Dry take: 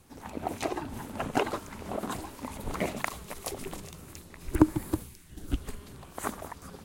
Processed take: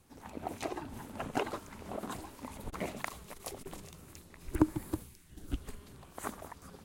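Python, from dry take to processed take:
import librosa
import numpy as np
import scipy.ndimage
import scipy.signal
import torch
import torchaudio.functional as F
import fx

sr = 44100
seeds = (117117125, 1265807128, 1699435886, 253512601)

y = fx.transformer_sat(x, sr, knee_hz=1000.0, at=(2.69, 3.67))
y = F.gain(torch.from_numpy(y), -6.0).numpy()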